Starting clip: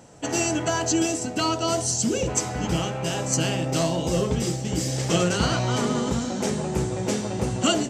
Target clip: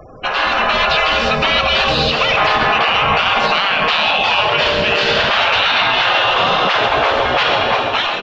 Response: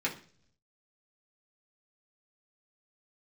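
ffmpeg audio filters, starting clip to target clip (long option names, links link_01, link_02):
-filter_complex "[0:a]afftfilt=real='re*lt(hypot(re,im),0.0794)':imag='im*lt(hypot(re,im),0.0794)':win_size=1024:overlap=0.75,equalizer=frequency=125:width_type=o:width=1:gain=-4,equalizer=frequency=250:width_type=o:width=1:gain=-5,equalizer=frequency=500:width_type=o:width=1:gain=-11,asetrate=42336,aresample=44100,aeval=exprs='0.168*(cos(1*acos(clip(val(0)/0.168,-1,1)))-cos(1*PI/2))+0.00422*(cos(5*acos(clip(val(0)/0.168,-1,1)))-cos(5*PI/2))+0.00422*(cos(6*acos(clip(val(0)/0.168,-1,1)))-cos(6*PI/2))+0.00106*(cos(8*acos(clip(val(0)/0.168,-1,1)))-cos(8*PI/2))':channel_layout=same,asplit=2[link_01][link_02];[link_02]aecho=0:1:135:0.316[link_03];[link_01][link_03]amix=inputs=2:normalize=0,afftfilt=real='re*gte(hypot(re,im),0.00282)':imag='im*gte(hypot(re,im),0.00282)':win_size=1024:overlap=0.75,equalizer=frequency=2200:width_type=o:width=0.59:gain=-6.5,dynaudnorm=framelen=120:gausssize=11:maxgain=9.5dB,highpass=frequency=200:width_type=q:width=0.5412,highpass=frequency=200:width_type=q:width=1.307,lowpass=frequency=3500:width_type=q:width=0.5176,lowpass=frequency=3500:width_type=q:width=0.7071,lowpass=frequency=3500:width_type=q:width=1.932,afreqshift=-170,alimiter=level_in=24.5dB:limit=-1dB:release=50:level=0:latency=1,volume=-4dB"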